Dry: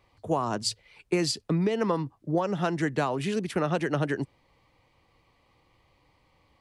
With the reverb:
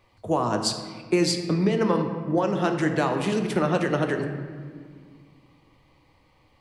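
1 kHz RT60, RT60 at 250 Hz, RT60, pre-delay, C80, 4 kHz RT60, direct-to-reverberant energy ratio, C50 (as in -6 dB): 1.6 s, 2.9 s, 1.8 s, 3 ms, 8.0 dB, 1.1 s, 4.5 dB, 6.5 dB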